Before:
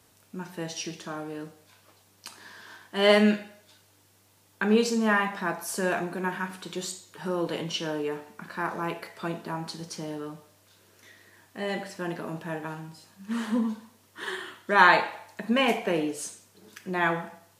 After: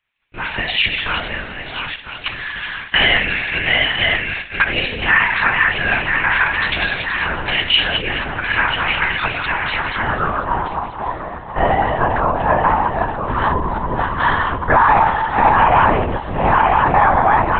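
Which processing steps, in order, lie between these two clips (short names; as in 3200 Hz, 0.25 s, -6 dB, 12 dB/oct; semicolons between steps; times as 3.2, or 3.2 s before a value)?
regenerating reverse delay 0.491 s, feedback 60%, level -7.5 dB; expander -43 dBFS; compressor 4:1, threshold -31 dBFS, peak gain reduction 15.5 dB; transient shaper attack +2 dB, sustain +7 dB; band-pass sweep 2300 Hz -> 940 Hz, 9.59–10.65; LPC vocoder at 8 kHz whisper; maximiser +30 dB; gain -2 dB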